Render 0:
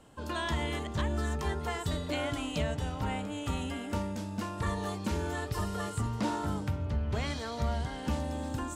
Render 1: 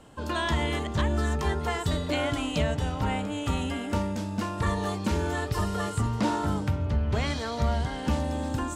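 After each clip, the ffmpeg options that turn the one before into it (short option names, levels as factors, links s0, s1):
-af "highshelf=f=10000:g=-5,volume=1.88"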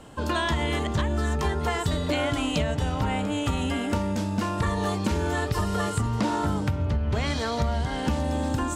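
-af "acompressor=threshold=0.0447:ratio=6,volume=1.88"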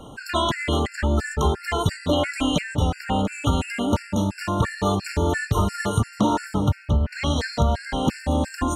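-af "afftfilt=real='re*gt(sin(2*PI*2.9*pts/sr)*(1-2*mod(floor(b*sr/1024/1400),2)),0)':imag='im*gt(sin(2*PI*2.9*pts/sr)*(1-2*mod(floor(b*sr/1024/1400),2)),0)':win_size=1024:overlap=0.75,volume=2"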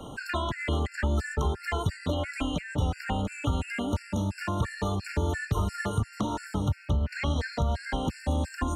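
-filter_complex "[0:a]acrossover=split=98|2700[s0][s1][s2];[s0]acompressor=threshold=0.0501:ratio=4[s3];[s1]acompressor=threshold=0.0316:ratio=4[s4];[s2]acompressor=threshold=0.00447:ratio=4[s5];[s3][s4][s5]amix=inputs=3:normalize=0"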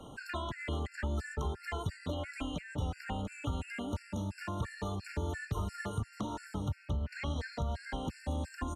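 -af "aresample=32000,aresample=44100,volume=0.398"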